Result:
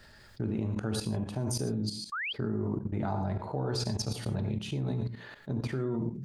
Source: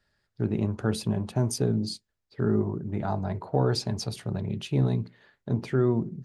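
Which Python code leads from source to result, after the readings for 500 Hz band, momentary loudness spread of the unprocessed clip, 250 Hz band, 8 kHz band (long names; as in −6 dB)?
−7.0 dB, 7 LU, −5.0 dB, −1.5 dB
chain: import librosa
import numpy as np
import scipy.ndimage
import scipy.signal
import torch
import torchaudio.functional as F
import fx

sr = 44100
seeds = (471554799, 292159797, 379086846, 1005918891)

y = fx.rev_gated(x, sr, seeds[0], gate_ms=150, shape='flat', drr_db=6.5)
y = fx.level_steps(y, sr, step_db=16)
y = fx.spec_paint(y, sr, seeds[1], shape='rise', start_s=2.12, length_s=0.21, low_hz=1100.0, high_hz=3400.0, level_db=-38.0)
y = fx.env_flatten(y, sr, amount_pct=50)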